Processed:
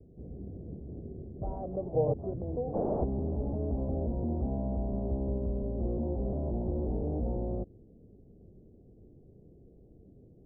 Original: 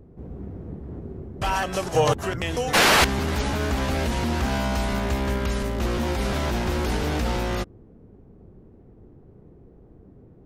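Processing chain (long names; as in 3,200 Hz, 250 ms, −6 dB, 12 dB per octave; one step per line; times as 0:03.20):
noise gate with hold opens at −43 dBFS
Butterworth low-pass 670 Hz 36 dB per octave
level −6.5 dB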